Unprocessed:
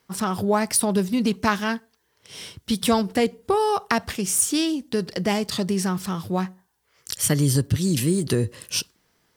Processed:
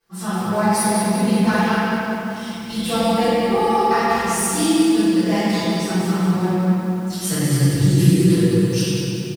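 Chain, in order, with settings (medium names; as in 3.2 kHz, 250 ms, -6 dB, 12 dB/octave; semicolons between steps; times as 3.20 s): hum notches 50/100/150/200 Hz; comb 5.9 ms, depth 72%; echo from a far wall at 17 m, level -9 dB; reverberation RT60 3.0 s, pre-delay 3 ms, DRR -19 dB; bit-crushed delay 192 ms, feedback 55%, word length 4-bit, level -7 dB; trim -17.5 dB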